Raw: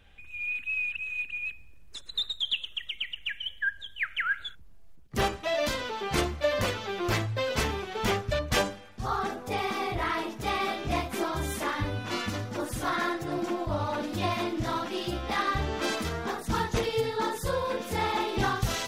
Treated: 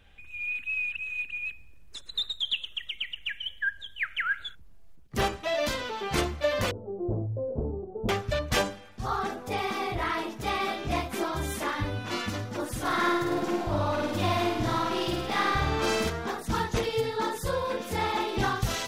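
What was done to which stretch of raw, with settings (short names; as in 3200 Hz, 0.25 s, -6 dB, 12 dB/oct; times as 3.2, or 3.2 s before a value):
6.71–8.09 inverse Chebyshev low-pass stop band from 2000 Hz, stop band 60 dB
12.8–16.1 flutter echo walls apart 8.9 m, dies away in 1 s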